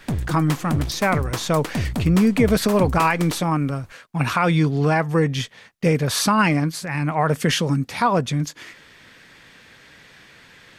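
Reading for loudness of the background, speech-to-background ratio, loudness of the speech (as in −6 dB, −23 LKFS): −28.5 LKFS, 7.5 dB, −21.0 LKFS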